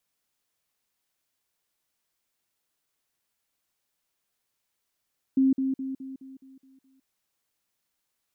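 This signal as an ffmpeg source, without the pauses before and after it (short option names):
-f lavfi -i "aevalsrc='pow(10,(-17.5-6*floor(t/0.21))/20)*sin(2*PI*266*t)*clip(min(mod(t,0.21),0.16-mod(t,0.21))/0.005,0,1)':d=1.68:s=44100"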